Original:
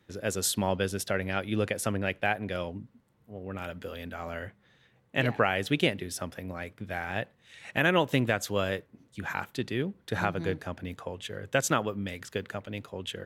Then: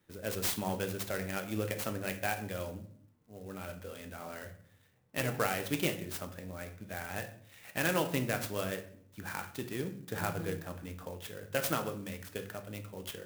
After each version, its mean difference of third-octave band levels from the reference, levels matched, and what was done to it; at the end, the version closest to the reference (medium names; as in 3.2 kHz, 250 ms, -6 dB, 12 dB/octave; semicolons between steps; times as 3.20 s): 8.0 dB: treble shelf 5.9 kHz +6.5 dB; hum notches 60/120 Hz; simulated room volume 81 m³, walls mixed, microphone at 0.41 m; sampling jitter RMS 0.046 ms; trim -7.5 dB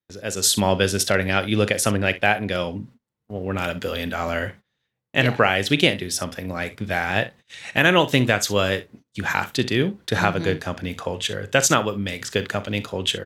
3.0 dB: peaking EQ 5.1 kHz +6.5 dB 1.7 oct; early reflections 39 ms -15.5 dB, 63 ms -17 dB; gate -51 dBFS, range -27 dB; level rider gain up to 11.5 dB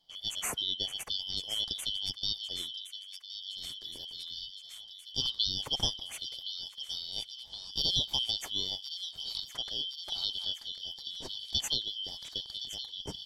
15.5 dB: four frequency bands reordered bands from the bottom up 3412; bass shelf 150 Hz +11 dB; feedback echo behind a high-pass 1067 ms, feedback 73%, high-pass 1.8 kHz, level -11 dB; dynamic bell 840 Hz, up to +4 dB, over -56 dBFS, Q 4.2; trim -6 dB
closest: second